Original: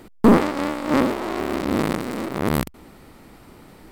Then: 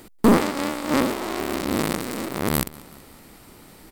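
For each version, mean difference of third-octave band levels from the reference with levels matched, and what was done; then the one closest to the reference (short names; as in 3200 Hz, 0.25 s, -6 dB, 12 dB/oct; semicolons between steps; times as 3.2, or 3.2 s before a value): 3.5 dB: high shelf 3700 Hz +11 dB; on a send: feedback echo 0.187 s, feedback 55%, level -22 dB; on the sum: gain -2.5 dB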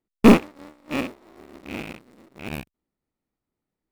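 15.5 dB: rattling part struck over -24 dBFS, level -9 dBFS; in parallel at -8.5 dB: sample-and-hold 28×; on the sum: upward expander 2.5:1, over -35 dBFS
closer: first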